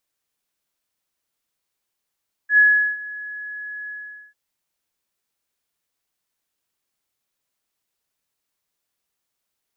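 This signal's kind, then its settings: ADSR sine 1690 Hz, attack 88 ms, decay 0.388 s, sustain -20.5 dB, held 1.40 s, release 0.446 s -9 dBFS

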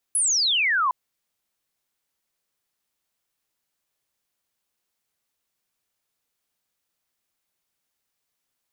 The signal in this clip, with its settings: laser zap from 11000 Hz, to 970 Hz, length 0.76 s sine, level -18.5 dB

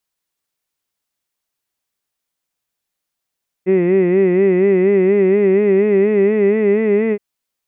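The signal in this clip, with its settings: formant-synthesis vowel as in hid, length 3.52 s, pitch 181 Hz, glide +3 st, vibrato 4.2 Hz, vibrato depth 0.95 st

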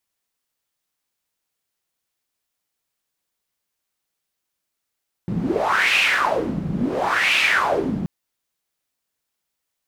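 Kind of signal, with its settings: wind-like swept noise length 2.78 s, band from 170 Hz, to 2600 Hz, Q 5.1, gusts 2, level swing 6 dB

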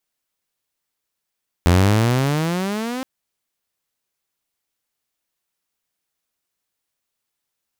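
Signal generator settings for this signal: gliding synth tone saw, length 1.37 s, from 83.8 Hz, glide +20 st, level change -14 dB, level -8 dB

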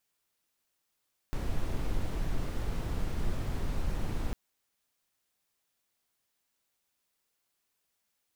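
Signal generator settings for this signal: noise brown, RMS -30 dBFS 3.00 s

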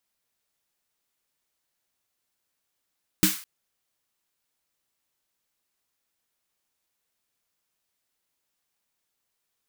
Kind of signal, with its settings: snare drum length 0.21 s, tones 190 Hz, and 310 Hz, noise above 1200 Hz, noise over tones -1.5 dB, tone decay 0.17 s, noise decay 0.42 s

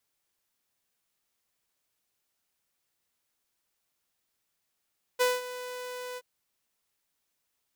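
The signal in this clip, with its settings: ADSR saw 498 Hz, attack 23 ms, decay 0.195 s, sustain -15.5 dB, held 0.98 s, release 44 ms -18.5 dBFS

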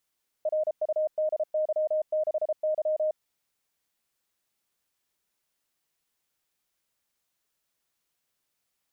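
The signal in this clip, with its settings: Morse "RUDY6Y" 33 wpm 619 Hz -23 dBFS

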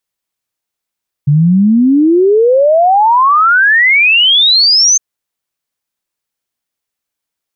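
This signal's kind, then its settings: log sweep 140 Hz -> 6400 Hz 3.71 s -5 dBFS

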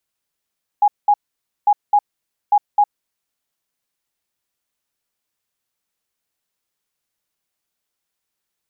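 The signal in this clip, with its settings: beep pattern sine 825 Hz, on 0.06 s, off 0.20 s, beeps 2, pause 0.53 s, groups 3, -9 dBFS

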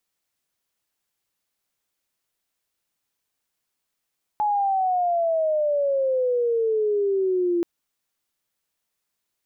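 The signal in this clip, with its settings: chirp logarithmic 850 Hz -> 340 Hz -19 dBFS -> -19 dBFS 3.23 s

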